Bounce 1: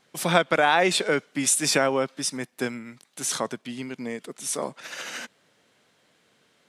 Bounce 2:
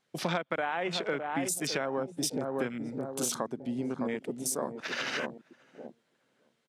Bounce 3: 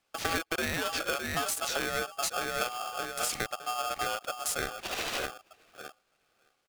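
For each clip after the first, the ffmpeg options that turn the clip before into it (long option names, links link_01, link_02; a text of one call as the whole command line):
ffmpeg -i in.wav -filter_complex "[0:a]asplit=2[link_01][link_02];[link_02]adelay=611,lowpass=frequency=1000:poles=1,volume=-8dB,asplit=2[link_03][link_04];[link_04]adelay=611,lowpass=frequency=1000:poles=1,volume=0.36,asplit=2[link_05][link_06];[link_06]adelay=611,lowpass=frequency=1000:poles=1,volume=0.36,asplit=2[link_07][link_08];[link_08]adelay=611,lowpass=frequency=1000:poles=1,volume=0.36[link_09];[link_01][link_03][link_05][link_07][link_09]amix=inputs=5:normalize=0,acompressor=threshold=-31dB:ratio=10,afwtdn=0.00891,volume=3.5dB" out.wav
ffmpeg -i in.wav -af "aeval=exprs='val(0)*sgn(sin(2*PI*980*n/s))':channel_layout=same" out.wav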